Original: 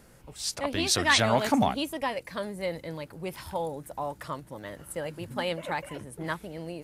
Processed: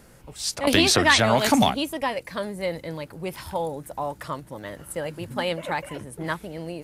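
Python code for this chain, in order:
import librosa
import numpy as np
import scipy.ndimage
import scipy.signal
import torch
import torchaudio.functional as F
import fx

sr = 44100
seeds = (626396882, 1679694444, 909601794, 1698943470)

y = fx.band_squash(x, sr, depth_pct=100, at=(0.67, 1.7))
y = F.gain(torch.from_numpy(y), 4.0).numpy()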